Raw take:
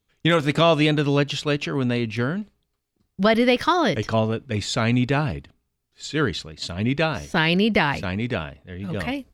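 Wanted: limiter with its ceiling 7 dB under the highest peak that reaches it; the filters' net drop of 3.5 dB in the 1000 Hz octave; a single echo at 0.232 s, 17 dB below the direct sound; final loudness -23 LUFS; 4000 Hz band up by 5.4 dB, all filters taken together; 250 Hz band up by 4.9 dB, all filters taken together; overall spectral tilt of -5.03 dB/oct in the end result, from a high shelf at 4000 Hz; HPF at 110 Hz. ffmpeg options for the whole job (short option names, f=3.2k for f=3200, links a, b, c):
-af "highpass=110,equalizer=f=250:t=o:g=6.5,equalizer=f=1k:t=o:g=-6,highshelf=f=4k:g=7,equalizer=f=4k:t=o:g=3.5,alimiter=limit=-9dB:level=0:latency=1,aecho=1:1:232:0.141,volume=-2dB"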